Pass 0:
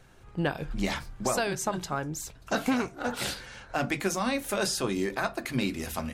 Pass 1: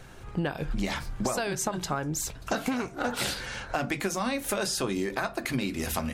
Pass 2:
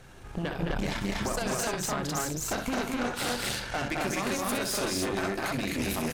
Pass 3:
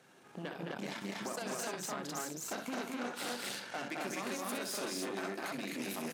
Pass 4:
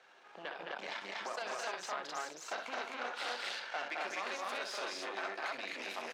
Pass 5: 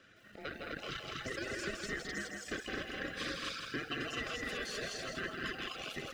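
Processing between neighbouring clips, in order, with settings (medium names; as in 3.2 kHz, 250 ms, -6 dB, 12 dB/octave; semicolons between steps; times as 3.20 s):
compression, threshold -35 dBFS, peak gain reduction 12.5 dB; trim +8.5 dB
loudspeakers at several distances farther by 22 m -7 dB, 74 m -4 dB, 88 m -1 dB; Chebyshev shaper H 5 -15 dB, 6 -12 dB, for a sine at -11.5 dBFS; trim -8.5 dB
high-pass 180 Hz 24 dB/octave; trim -8.5 dB
three-band isolator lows -24 dB, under 490 Hz, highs -24 dB, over 5.4 kHz; trim +3 dB
every band turned upside down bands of 1 kHz; reverb removal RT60 1.7 s; bit-crushed delay 162 ms, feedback 35%, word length 11-bit, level -4.5 dB; trim +1 dB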